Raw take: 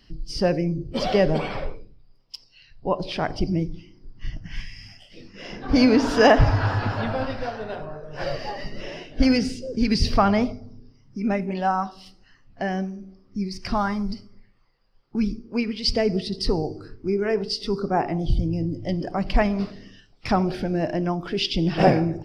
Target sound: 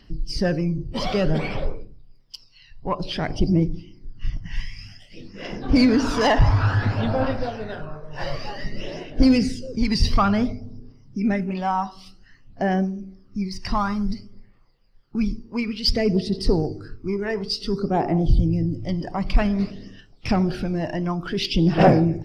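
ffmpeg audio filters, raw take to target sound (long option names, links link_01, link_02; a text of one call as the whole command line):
ffmpeg -i in.wav -af "asoftclip=type=tanh:threshold=-11.5dB,aphaser=in_gain=1:out_gain=1:delay=1.1:decay=0.49:speed=0.55:type=triangular" out.wav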